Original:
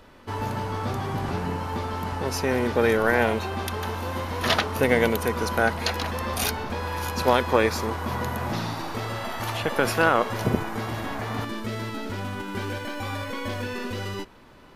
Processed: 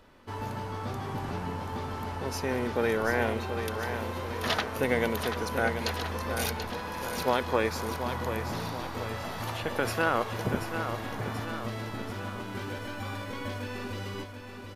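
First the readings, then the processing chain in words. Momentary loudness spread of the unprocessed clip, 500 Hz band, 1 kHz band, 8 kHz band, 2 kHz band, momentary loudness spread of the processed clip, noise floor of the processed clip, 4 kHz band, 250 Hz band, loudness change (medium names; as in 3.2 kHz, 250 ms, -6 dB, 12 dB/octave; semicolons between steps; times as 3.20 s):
11 LU, -5.5 dB, -5.5 dB, -5.5 dB, -5.5 dB, 9 LU, -42 dBFS, -5.5 dB, -5.5 dB, -5.5 dB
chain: feedback delay 734 ms, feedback 55%, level -8 dB; trim -6.5 dB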